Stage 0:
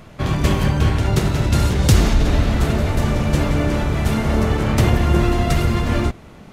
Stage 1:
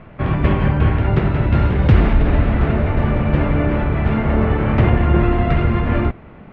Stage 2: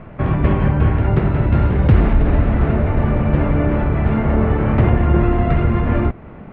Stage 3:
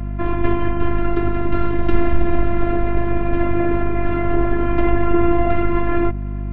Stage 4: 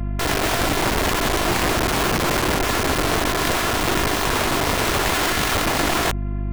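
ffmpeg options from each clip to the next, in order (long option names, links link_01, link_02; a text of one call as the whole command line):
ffmpeg -i in.wav -af "lowpass=frequency=2500:width=0.5412,lowpass=frequency=2500:width=1.3066,volume=1.5dB" out.wav
ffmpeg -i in.wav -filter_complex "[0:a]asplit=2[link_01][link_02];[link_02]acompressor=threshold=-23dB:ratio=6,volume=-1dB[link_03];[link_01][link_03]amix=inputs=2:normalize=0,highshelf=frequency=2800:gain=-10.5,volume=-1.5dB" out.wav
ffmpeg -i in.wav -af "afftfilt=real='hypot(re,im)*cos(PI*b)':imag='0':win_size=512:overlap=0.75,aeval=exprs='val(0)+0.0501*(sin(2*PI*50*n/s)+sin(2*PI*2*50*n/s)/2+sin(2*PI*3*50*n/s)/3+sin(2*PI*4*50*n/s)/4+sin(2*PI*5*50*n/s)/5)':channel_layout=same,volume=3dB" out.wav
ffmpeg -i in.wav -af "aeval=exprs='(mod(5.96*val(0)+1,2)-1)/5.96':channel_layout=same" out.wav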